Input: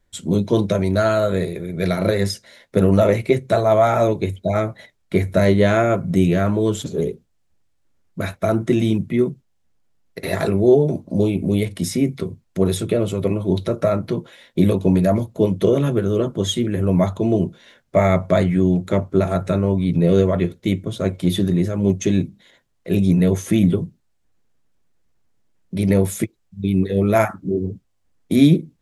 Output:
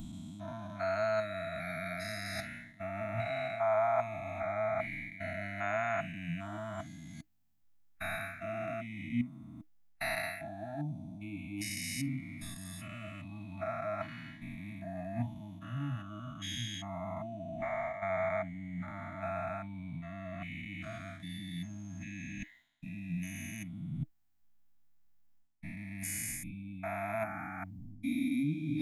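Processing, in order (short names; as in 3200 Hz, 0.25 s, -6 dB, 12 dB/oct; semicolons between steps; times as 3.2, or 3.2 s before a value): stepped spectrum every 0.4 s; reverse; compressor 5:1, threshold -33 dBFS, peak gain reduction 18 dB; reverse; dynamic EQ 2200 Hz, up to +4 dB, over -57 dBFS, Q 1.2; Chebyshev band-stop 310–640 Hz, order 5; spectral noise reduction 14 dB; gain +6 dB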